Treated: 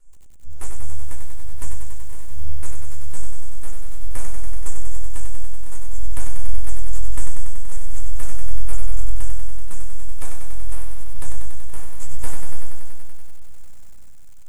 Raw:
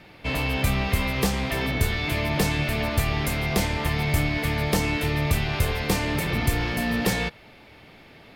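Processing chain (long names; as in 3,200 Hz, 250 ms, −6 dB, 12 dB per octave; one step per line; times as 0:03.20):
reverb reduction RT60 1.1 s
inverse Chebyshev band-stop filter 110–7,300 Hz, stop band 40 dB
high-shelf EQ 2,300 Hz +5.5 dB
full-wave rectification
wrong playback speed 78 rpm record played at 45 rpm
downward compressor 6 to 1, threshold −39 dBFS, peak gain reduction 15 dB
sample-and-hold tremolo, depth 80%
low-shelf EQ 80 Hz +6.5 dB
hum removal 225.5 Hz, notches 27
convolution reverb RT60 0.35 s, pre-delay 6 ms, DRR 0.5 dB
feedback echo at a low word length 95 ms, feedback 80%, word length 9 bits, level −5.5 dB
level +6 dB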